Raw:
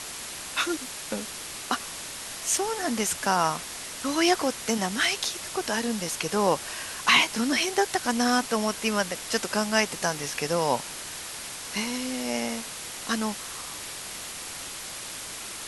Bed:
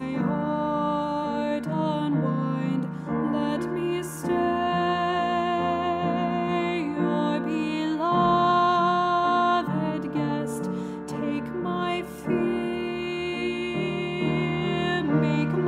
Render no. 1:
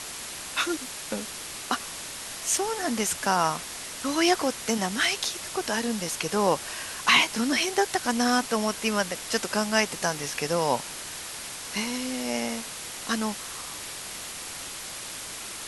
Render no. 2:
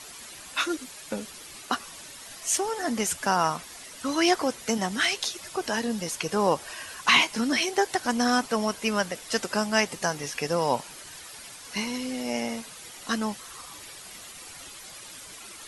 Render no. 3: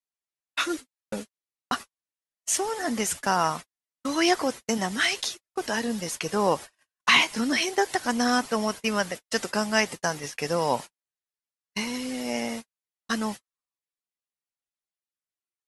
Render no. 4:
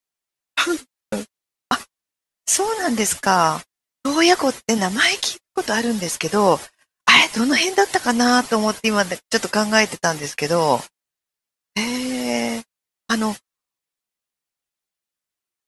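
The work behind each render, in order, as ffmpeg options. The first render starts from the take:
-af anull
-af "afftdn=nr=10:nf=-38"
-af "agate=range=-56dB:threshold=-33dB:ratio=16:detection=peak,equalizer=f=1.9k:w=6:g=2.5"
-af "volume=7.5dB,alimiter=limit=-1dB:level=0:latency=1"

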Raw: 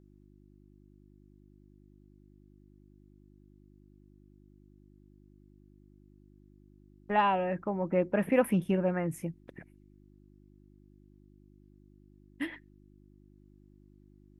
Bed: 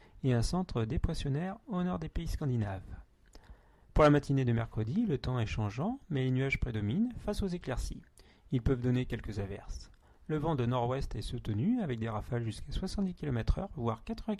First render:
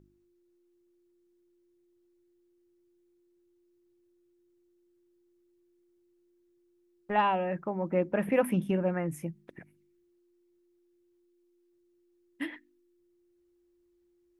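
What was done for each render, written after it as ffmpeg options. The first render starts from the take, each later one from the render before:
-af "bandreject=f=50:t=h:w=4,bandreject=f=100:t=h:w=4,bandreject=f=150:t=h:w=4,bandreject=f=200:t=h:w=4,bandreject=f=250:t=h:w=4,bandreject=f=300:t=h:w=4"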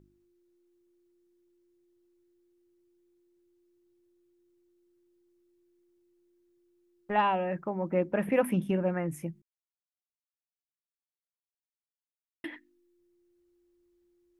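-filter_complex "[0:a]asplit=3[a][b][c];[a]atrim=end=9.42,asetpts=PTS-STARTPTS,afade=t=out:st=9.416:d=0.004:c=hsin[d];[b]atrim=start=9.42:end=12.44,asetpts=PTS-STARTPTS,volume=0[e];[c]atrim=start=12.44,asetpts=PTS-STARTPTS,afade=t=in:d=0.004:c=hsin[f];[d][e][f]concat=n=3:v=0:a=1"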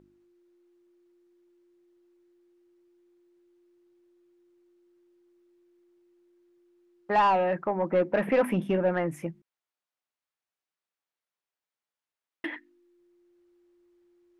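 -filter_complex "[0:a]asplit=2[a][b];[b]highpass=f=720:p=1,volume=17dB,asoftclip=type=tanh:threshold=-13dB[c];[a][c]amix=inputs=2:normalize=0,lowpass=f=1.6k:p=1,volume=-6dB"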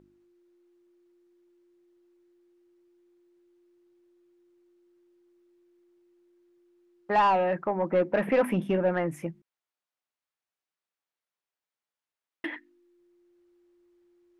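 -af anull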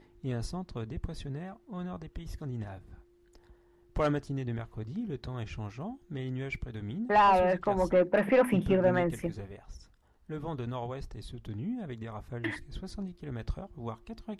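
-filter_complex "[1:a]volume=-5dB[a];[0:a][a]amix=inputs=2:normalize=0"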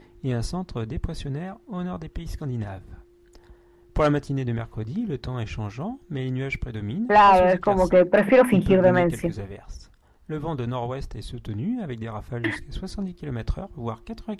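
-af "volume=8dB"

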